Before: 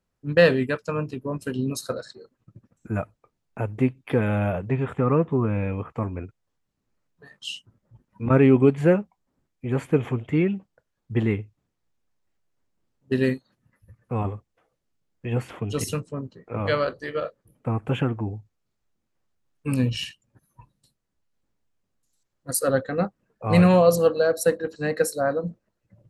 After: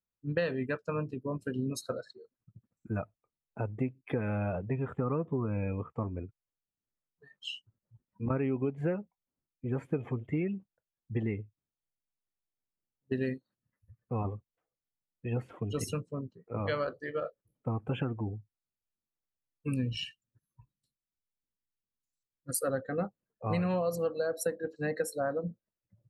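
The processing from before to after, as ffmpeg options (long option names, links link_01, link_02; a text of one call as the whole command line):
ffmpeg -i in.wav -filter_complex "[0:a]asettb=1/sr,asplit=3[link_01][link_02][link_03];[link_01]atrim=end=19.694[link_04];[link_02]atrim=start=19.69:end=22.61,asetpts=PTS-STARTPTS,afade=type=in:duration=0.004:curve=qsin,afade=type=out:start_time=2.916:duration=0.004:curve=qsin,equalizer=frequency=750:width_type=o:width=0.47:gain=-14.5[link_05];[link_03]atrim=start=22.606[link_06];[link_04][link_05]acrossfade=duration=0.004:curve1=hsin:curve2=qsin[link_07];[link_07][link_06]acrossfade=duration=0.004:curve1=qsin:curve2=hsin,afftdn=noise_reduction=14:noise_floor=-37,acompressor=threshold=-22dB:ratio=6,volume=-5.5dB" out.wav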